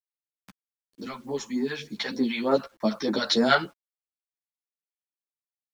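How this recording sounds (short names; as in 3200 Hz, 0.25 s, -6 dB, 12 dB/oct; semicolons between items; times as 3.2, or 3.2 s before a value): phasing stages 2, 3.3 Hz, lowest notch 250–3200 Hz; a quantiser's noise floor 10-bit, dither none; a shimmering, thickened sound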